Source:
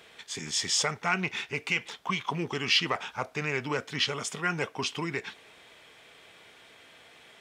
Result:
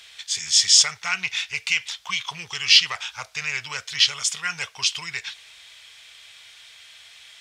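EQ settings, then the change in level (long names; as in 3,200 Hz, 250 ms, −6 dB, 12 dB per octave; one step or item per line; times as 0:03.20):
guitar amp tone stack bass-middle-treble 10-0-10
parametric band 68 Hz +5 dB 1.7 octaves
parametric band 5,000 Hz +9 dB 2 octaves
+5.5 dB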